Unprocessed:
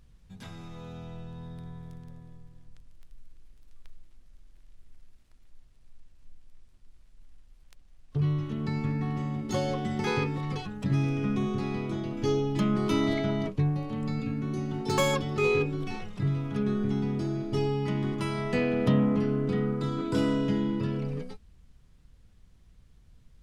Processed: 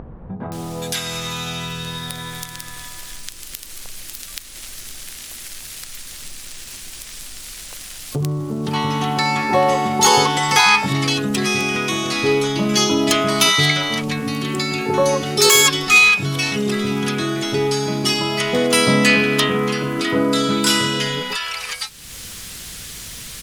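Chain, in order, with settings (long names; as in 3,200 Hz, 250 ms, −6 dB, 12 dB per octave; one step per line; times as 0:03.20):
spectral tilt +4.5 dB per octave
multiband delay without the direct sound lows, highs 520 ms, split 900 Hz
upward compression, threshold −34 dBFS
0:08.73–0:10.86: parametric band 900 Hz +12.5 dB 0.7 octaves
boost into a limiter +17 dB
level −1 dB
AAC 192 kbit/s 48,000 Hz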